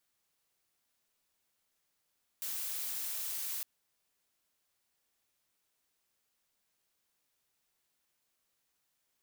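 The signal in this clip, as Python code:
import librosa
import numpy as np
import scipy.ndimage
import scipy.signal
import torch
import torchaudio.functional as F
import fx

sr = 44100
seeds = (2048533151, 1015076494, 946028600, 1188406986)

y = fx.noise_colour(sr, seeds[0], length_s=1.21, colour='blue', level_db=-38.0)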